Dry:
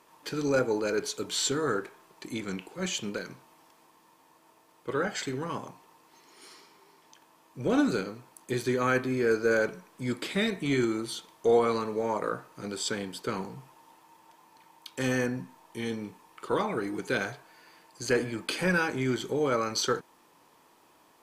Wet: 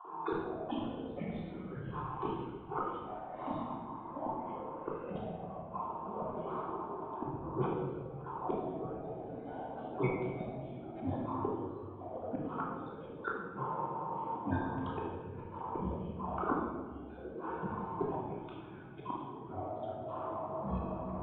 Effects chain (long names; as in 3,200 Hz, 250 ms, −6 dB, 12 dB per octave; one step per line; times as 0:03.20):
time-frequency cells dropped at random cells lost 27%
low-pass that shuts in the quiet parts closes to 730 Hz, open at −24.5 dBFS
high-pass filter 190 Hz 24 dB per octave
parametric band 1,300 Hz +9 dB 1.4 octaves
downward compressor 10 to 1, threshold −31 dBFS, peak gain reduction 15.5 dB
phaser with its sweep stopped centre 380 Hz, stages 8
gate with flip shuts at −37 dBFS, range −36 dB
convolution reverb RT60 1.3 s, pre-delay 3 ms, DRR −6 dB
delay with pitch and tempo change per echo 324 ms, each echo −6 semitones, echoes 3
downsampling to 8,000 Hz
level +11 dB